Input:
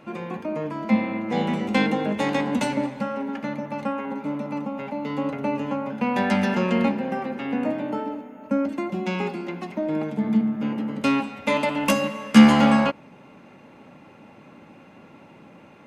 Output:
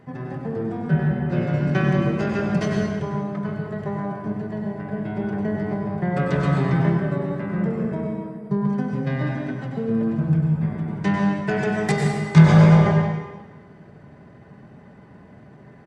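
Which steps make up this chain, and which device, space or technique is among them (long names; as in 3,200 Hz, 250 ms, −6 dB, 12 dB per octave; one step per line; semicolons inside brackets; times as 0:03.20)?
monster voice (pitch shifter −5.5 semitones; low-shelf EQ 230 Hz +5.5 dB; convolution reverb RT60 1.2 s, pre-delay 92 ms, DRR 0.5 dB)
level −3 dB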